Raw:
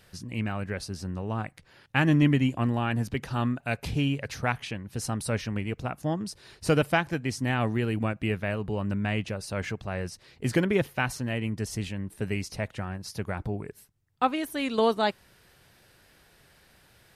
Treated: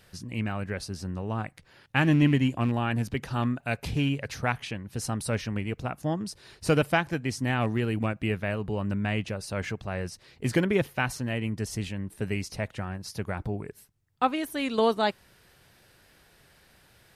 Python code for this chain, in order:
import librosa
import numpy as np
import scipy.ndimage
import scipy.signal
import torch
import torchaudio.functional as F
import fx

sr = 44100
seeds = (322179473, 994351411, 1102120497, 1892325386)

y = fx.rattle_buzz(x, sr, strikes_db=-23.0, level_db=-33.0)